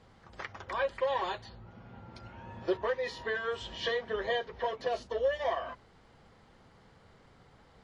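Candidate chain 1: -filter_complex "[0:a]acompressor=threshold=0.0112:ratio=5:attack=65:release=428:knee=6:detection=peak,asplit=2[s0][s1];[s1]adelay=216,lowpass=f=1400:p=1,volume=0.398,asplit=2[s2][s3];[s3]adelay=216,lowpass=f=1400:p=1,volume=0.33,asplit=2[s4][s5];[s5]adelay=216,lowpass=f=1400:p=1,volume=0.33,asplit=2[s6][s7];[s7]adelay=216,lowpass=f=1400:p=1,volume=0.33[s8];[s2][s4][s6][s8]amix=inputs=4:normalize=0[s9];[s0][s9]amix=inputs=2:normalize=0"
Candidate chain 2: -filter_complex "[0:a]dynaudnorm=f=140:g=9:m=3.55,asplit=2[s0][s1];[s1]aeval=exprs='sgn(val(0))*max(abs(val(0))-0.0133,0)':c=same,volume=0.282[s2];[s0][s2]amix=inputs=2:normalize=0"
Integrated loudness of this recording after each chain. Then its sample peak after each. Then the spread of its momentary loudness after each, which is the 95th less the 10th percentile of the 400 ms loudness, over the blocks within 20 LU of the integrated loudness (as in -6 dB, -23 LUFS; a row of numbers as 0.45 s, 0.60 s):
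-41.0 LUFS, -21.0 LUFS; -24.5 dBFS, -5.5 dBFS; 21 LU, 20 LU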